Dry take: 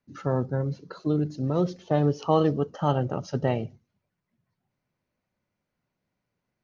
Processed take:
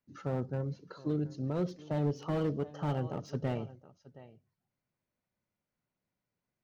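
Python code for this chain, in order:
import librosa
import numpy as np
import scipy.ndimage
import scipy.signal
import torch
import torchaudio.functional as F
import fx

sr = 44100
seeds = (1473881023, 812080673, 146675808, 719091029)

y = x + 10.0 ** (-20.0 / 20.0) * np.pad(x, (int(720 * sr / 1000.0), 0))[:len(x)]
y = fx.slew_limit(y, sr, full_power_hz=42.0)
y = y * 10.0 ** (-7.5 / 20.0)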